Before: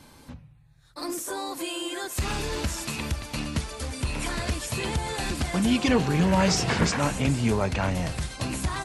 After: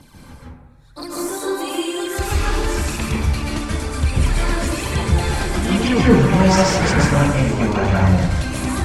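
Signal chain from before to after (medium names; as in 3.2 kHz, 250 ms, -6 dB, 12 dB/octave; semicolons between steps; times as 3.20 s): 7.30–8.31 s: peaking EQ 9.9 kHz -8.5 dB 0.41 oct; phaser 1 Hz, delay 3.7 ms, feedback 57%; plate-style reverb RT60 1 s, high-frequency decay 0.3×, pre-delay 120 ms, DRR -5.5 dB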